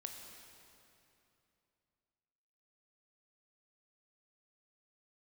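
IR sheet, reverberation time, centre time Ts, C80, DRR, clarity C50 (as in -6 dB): 2.9 s, 75 ms, 5.0 dB, 3.0 dB, 4.0 dB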